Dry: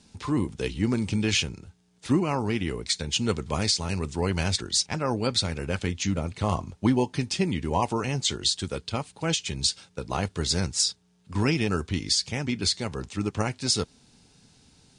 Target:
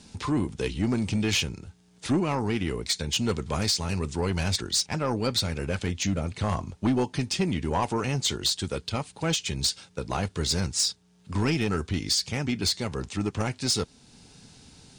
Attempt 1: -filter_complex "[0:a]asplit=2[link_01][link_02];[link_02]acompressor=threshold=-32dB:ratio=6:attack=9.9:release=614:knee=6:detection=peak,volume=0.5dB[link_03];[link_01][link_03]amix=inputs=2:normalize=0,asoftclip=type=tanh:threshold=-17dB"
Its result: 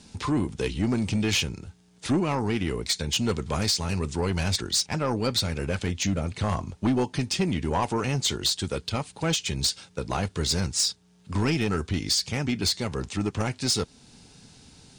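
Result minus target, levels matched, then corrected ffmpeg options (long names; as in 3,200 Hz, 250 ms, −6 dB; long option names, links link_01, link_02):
downward compressor: peak gain reduction −6 dB
-filter_complex "[0:a]asplit=2[link_01][link_02];[link_02]acompressor=threshold=-39.5dB:ratio=6:attack=9.9:release=614:knee=6:detection=peak,volume=0.5dB[link_03];[link_01][link_03]amix=inputs=2:normalize=0,asoftclip=type=tanh:threshold=-17dB"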